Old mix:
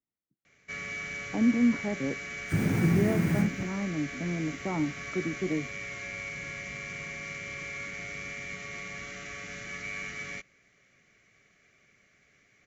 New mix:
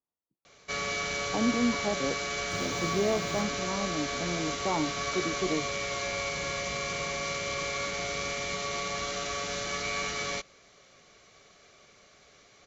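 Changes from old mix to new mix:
first sound +8.0 dB; second sound -10.0 dB; master: add ten-band graphic EQ 125 Hz -5 dB, 250 Hz -4 dB, 500 Hz +4 dB, 1 kHz +9 dB, 2 kHz -12 dB, 4 kHz +10 dB

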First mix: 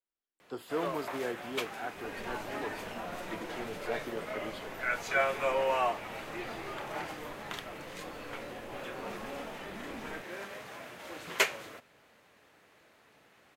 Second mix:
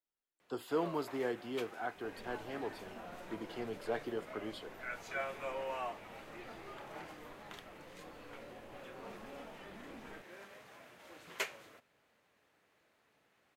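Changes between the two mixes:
first sound -11.0 dB; second sound -7.5 dB

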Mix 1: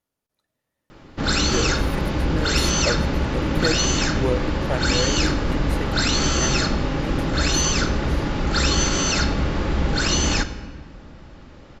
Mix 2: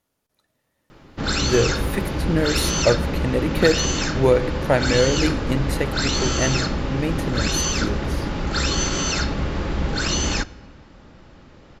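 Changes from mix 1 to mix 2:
speech +8.0 dB; background: send -10.5 dB

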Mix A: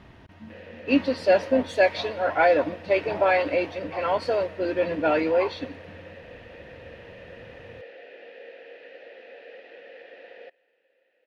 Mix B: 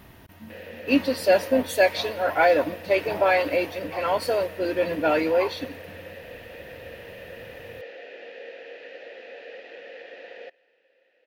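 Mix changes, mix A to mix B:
background +3.0 dB; master: remove distance through air 120 m

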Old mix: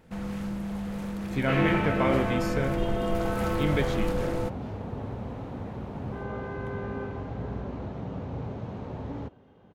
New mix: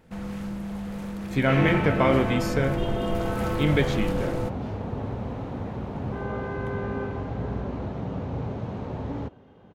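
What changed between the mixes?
speech +5.0 dB; second sound +4.0 dB

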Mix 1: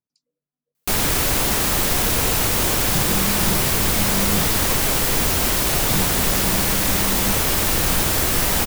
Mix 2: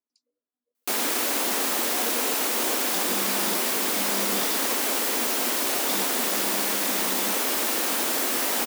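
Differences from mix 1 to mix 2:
first sound -4.0 dB; master: add elliptic high-pass 240 Hz, stop band 60 dB

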